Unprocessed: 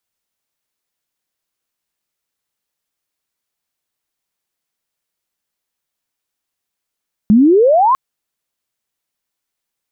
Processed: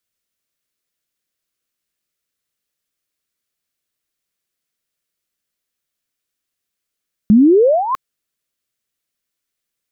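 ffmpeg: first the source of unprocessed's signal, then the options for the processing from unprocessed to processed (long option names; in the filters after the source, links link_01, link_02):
-f lavfi -i "aevalsrc='pow(10,(-5-3.5*t/0.65)/20)*sin(2*PI*200*0.65/log(1100/200)*(exp(log(1100/200)*t/0.65)-1))':duration=0.65:sample_rate=44100"
-af "equalizer=frequency=870:width_type=o:width=0.53:gain=-10.5"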